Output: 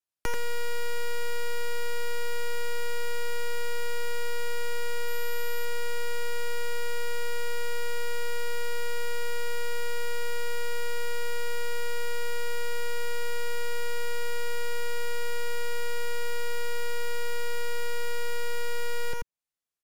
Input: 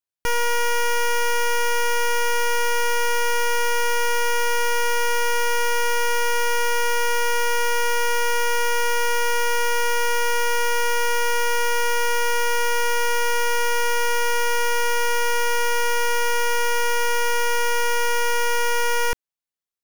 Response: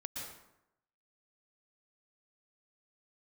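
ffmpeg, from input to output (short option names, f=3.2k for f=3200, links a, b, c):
-filter_complex "[0:a]acrossover=split=190|920|2100[a][b][c][d];[a]acompressor=threshold=-25dB:ratio=4[e];[b]acompressor=threshold=-38dB:ratio=4[f];[c]acompressor=threshold=-41dB:ratio=4[g];[d]acompressor=threshold=-43dB:ratio=4[h];[e][f][g][h]amix=inputs=4:normalize=0,asplit=2[i][j];[j]acrusher=bits=5:mix=0:aa=0.000001,volume=-9dB[k];[i][k]amix=inputs=2:normalize=0,aecho=1:1:86:0.631,aeval=exprs='0.119*(abs(mod(val(0)/0.119+3,4)-2)-1)':c=same,asettb=1/sr,asplit=3[l][m][n];[l]atrim=end=5.084[o];[m]atrim=start=5.08:end=5.65,asetpts=PTS-STARTPTS,afade=t=in:d=0.004:c=qsin,afade=t=out:st=0.566:d=0.004:c=qsin,aeval=exprs='val(0)+0.00794*sin(2*PI*12000*n/s)':c=same[p];[n]atrim=start=5.646[q];[o][p]acrossfade=d=0.004:c1=hsin:c2=qsin[r];[r][q]acrossfade=d=0.004:c1=qsin:c2=hsin[s];[1:a]atrim=start_sample=2205,atrim=end_sample=4410,asetrate=26460,aresample=44100[t];[s][t]afir=irnorm=-1:irlink=0"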